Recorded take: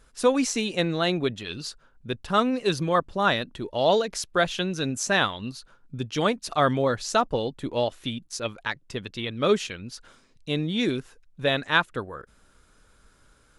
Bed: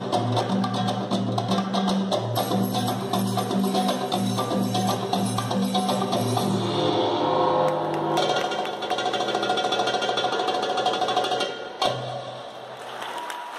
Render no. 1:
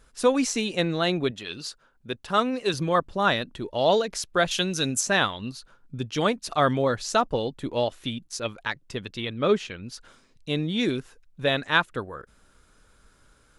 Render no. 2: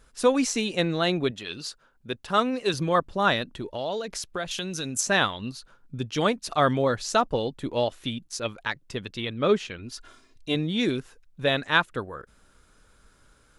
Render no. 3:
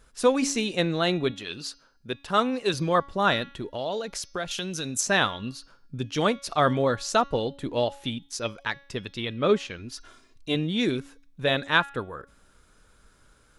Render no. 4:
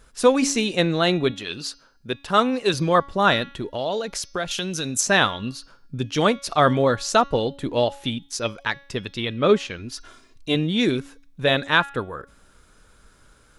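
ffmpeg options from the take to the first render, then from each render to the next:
ffmpeg -i in.wav -filter_complex "[0:a]asettb=1/sr,asplit=3[link_01][link_02][link_03];[link_01]atrim=end=1.314[link_04];[link_02]atrim=start=1.31:end=2.74,asetpts=PTS-STARTPTS,afade=type=in:duration=0.004:curve=qsin,afade=type=out:start_time=1.426:duration=0.004:curve=qsin,lowshelf=frequency=160:gain=-10[link_05];[link_03]atrim=start=2.736[link_06];[link_04][link_05]acrossfade=duration=0.004:curve1=hsin:curve2=qsin[link_07];[link_07][link_06]acrossfade=duration=0.004:curve1=qsin:curve2=hsin,asettb=1/sr,asplit=3[link_08][link_09][link_10];[link_08]atrim=end=4.514[link_11];[link_09]atrim=start=4.51:end=5.01,asetpts=PTS-STARTPTS,afade=type=in:duration=0.004:curve=qsin,afade=type=out:start_time=0.496:duration=0.004:curve=qsin,highshelf=frequency=4100:gain=12[link_12];[link_10]atrim=start=5.006[link_13];[link_11][link_12]acrossfade=duration=0.004:curve1=hsin:curve2=qsin[link_14];[link_14][link_13]acrossfade=duration=0.004:curve1=qsin:curve2=hsin,asettb=1/sr,asplit=3[link_15][link_16][link_17];[link_15]atrim=end=9.334[link_18];[link_16]atrim=start=9.33:end=9.83,asetpts=PTS-STARTPTS,afade=type=in:duration=0.004:curve=qsin,afade=type=out:start_time=0.496:duration=0.004:curve=qsin,lowpass=frequency=2800:poles=1[link_19];[link_17]atrim=start=9.826[link_20];[link_18][link_19]acrossfade=duration=0.004:curve1=hsin:curve2=qsin[link_21];[link_21][link_20]acrossfade=duration=0.004:curve1=qsin:curve2=hsin" out.wav
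ffmpeg -i in.wav -filter_complex "[0:a]asettb=1/sr,asplit=3[link_01][link_02][link_03];[link_01]atrim=end=3.614[link_04];[link_02]atrim=start=3.61:end=4.99,asetpts=PTS-STARTPTS,afade=type=in:duration=0.004:curve=qsin,afade=type=out:start_time=1.376:duration=0.004:curve=qsin,acompressor=threshold=-29dB:ratio=3:attack=3.2:release=140:knee=1:detection=peak[link_05];[link_03]atrim=start=4.986[link_06];[link_04][link_05]acrossfade=duration=0.004:curve1=hsin:curve2=qsin[link_07];[link_07][link_06]acrossfade=duration=0.004:curve1=qsin:curve2=hsin,asettb=1/sr,asplit=3[link_08][link_09][link_10];[link_08]atrim=end=9.784[link_11];[link_09]atrim=start=9.78:end=10.55,asetpts=PTS-STARTPTS,afade=type=in:duration=0.004:curve=qsin,afade=type=out:start_time=0.766:duration=0.004:curve=qsin,aecho=1:1:2.9:0.65,atrim=end_sample=33957[link_12];[link_10]atrim=start=10.546[link_13];[link_11][link_12]acrossfade=duration=0.004:curve1=hsin:curve2=qsin[link_14];[link_14][link_13]acrossfade=duration=0.004:curve1=qsin:curve2=hsin" out.wav
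ffmpeg -i in.wav -af "bandreject=frequency=279.2:width_type=h:width=4,bandreject=frequency=558.4:width_type=h:width=4,bandreject=frequency=837.6:width_type=h:width=4,bandreject=frequency=1116.8:width_type=h:width=4,bandreject=frequency=1396:width_type=h:width=4,bandreject=frequency=1675.2:width_type=h:width=4,bandreject=frequency=1954.4:width_type=h:width=4,bandreject=frequency=2233.6:width_type=h:width=4,bandreject=frequency=2512.8:width_type=h:width=4,bandreject=frequency=2792:width_type=h:width=4,bandreject=frequency=3071.2:width_type=h:width=4,bandreject=frequency=3350.4:width_type=h:width=4,bandreject=frequency=3629.6:width_type=h:width=4,bandreject=frequency=3908.8:width_type=h:width=4,bandreject=frequency=4188:width_type=h:width=4,bandreject=frequency=4467.2:width_type=h:width=4,bandreject=frequency=4746.4:width_type=h:width=4,bandreject=frequency=5025.6:width_type=h:width=4,bandreject=frequency=5304.8:width_type=h:width=4,bandreject=frequency=5584:width_type=h:width=4,bandreject=frequency=5863.2:width_type=h:width=4,bandreject=frequency=6142.4:width_type=h:width=4,bandreject=frequency=6421.6:width_type=h:width=4" out.wav
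ffmpeg -i in.wav -af "volume=4.5dB,alimiter=limit=-3dB:level=0:latency=1" out.wav

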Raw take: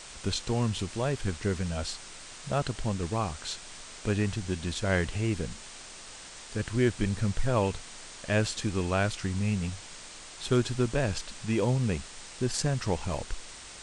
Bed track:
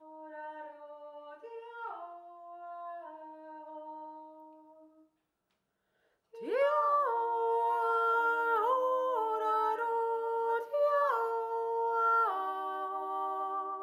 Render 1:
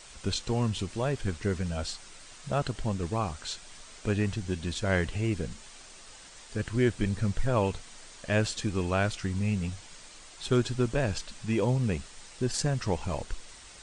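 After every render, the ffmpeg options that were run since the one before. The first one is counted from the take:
ffmpeg -i in.wav -af "afftdn=noise_reduction=6:noise_floor=-46" out.wav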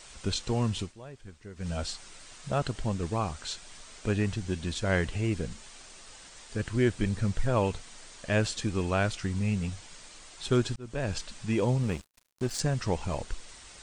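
ffmpeg -i in.wav -filter_complex "[0:a]asettb=1/sr,asplit=3[link_01][link_02][link_03];[link_01]atrim=end=11.834[link_04];[link_02]atrim=start=11.83:end=12.6,asetpts=PTS-STARTPTS,afade=type=in:duration=0.004:curve=qsin,afade=type=out:start_time=0.766:duration=0.004:curve=qsin,aeval=exprs='sgn(val(0))*max(abs(val(0))-0.01,0)':channel_layout=same[link_05];[link_03]atrim=start=12.596[link_06];[link_04][link_05]acrossfade=duration=0.004:curve1=hsin:curve2=qsin[link_07];[link_07][link_06]acrossfade=duration=0.004:curve1=qsin:curve2=hsin,asplit=4[link_08][link_09][link_10][link_11];[link_08]atrim=end=0.93,asetpts=PTS-STARTPTS,afade=type=out:start_time=0.8:duration=0.13:silence=0.158489[link_12];[link_09]atrim=start=0.93:end=1.56,asetpts=PTS-STARTPTS,volume=-16dB[link_13];[link_10]atrim=start=1.56:end=10.76,asetpts=PTS-STARTPTS,afade=type=in:duration=0.13:silence=0.158489,afade=type=out:start_time=9.196:duration=0.004:curve=hsin[link_14];[link_11]atrim=start=10.76,asetpts=PTS-STARTPTS,afade=type=in:duration=0.4[link_15];[link_12][link_13][link_14][link_15]concat=n=4:v=0:a=1" out.wav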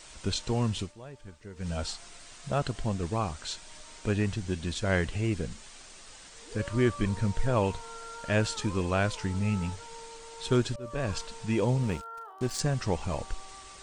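ffmpeg -i in.wav -i bed.wav -filter_complex "[1:a]volume=-15dB[link_01];[0:a][link_01]amix=inputs=2:normalize=0" out.wav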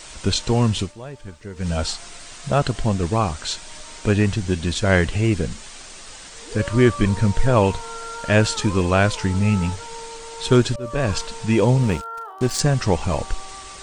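ffmpeg -i in.wav -af "volume=10dB" out.wav

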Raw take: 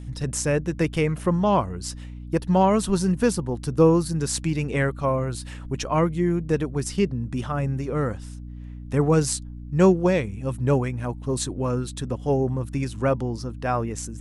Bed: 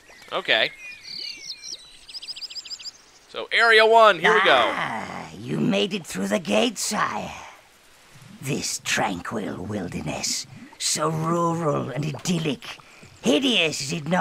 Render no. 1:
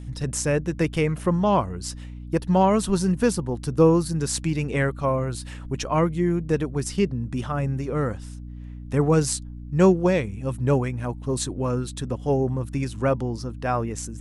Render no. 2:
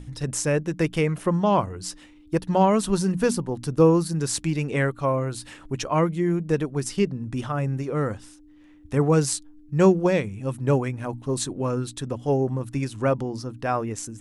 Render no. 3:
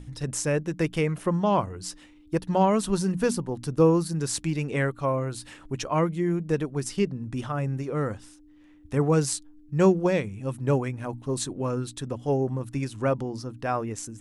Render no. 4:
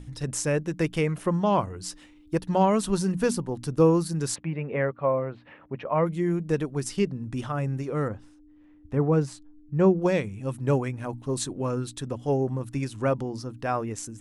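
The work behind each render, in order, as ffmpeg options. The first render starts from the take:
ffmpeg -i in.wav -af anull out.wav
ffmpeg -i in.wav -af "bandreject=frequency=60:width_type=h:width=6,bandreject=frequency=120:width_type=h:width=6,bandreject=frequency=180:width_type=h:width=6,bandreject=frequency=240:width_type=h:width=6" out.wav
ffmpeg -i in.wav -af "volume=-2.5dB" out.wav
ffmpeg -i in.wav -filter_complex "[0:a]asplit=3[link_01][link_02][link_03];[link_01]afade=type=out:start_time=4.34:duration=0.02[link_04];[link_02]highpass=110,equalizer=frequency=120:width_type=q:width=4:gain=-5,equalizer=frequency=310:width_type=q:width=4:gain=-7,equalizer=frequency=560:width_type=q:width=4:gain=5,equalizer=frequency=1500:width_type=q:width=4:gain=-4,lowpass=frequency=2300:width=0.5412,lowpass=frequency=2300:width=1.3066,afade=type=in:start_time=4.34:duration=0.02,afade=type=out:start_time=6.05:duration=0.02[link_05];[link_03]afade=type=in:start_time=6.05:duration=0.02[link_06];[link_04][link_05][link_06]amix=inputs=3:normalize=0,asettb=1/sr,asplit=3[link_07][link_08][link_09];[link_07]atrim=end=8.084[link_10];[link_08]atrim=start=8.08:end=10.02,asetpts=PTS-STARTPTS,afade=type=in:duration=0.004:curve=qsin,afade=type=out:start_time=1.936:duration=0.004:curve=qsin,lowpass=frequency=1100:poles=1[link_11];[link_09]atrim=start=10.016[link_12];[link_10][link_11]acrossfade=duration=0.004:curve1=hsin:curve2=qsin[link_13];[link_13][link_12]acrossfade=duration=0.004:curve1=qsin:curve2=hsin" out.wav

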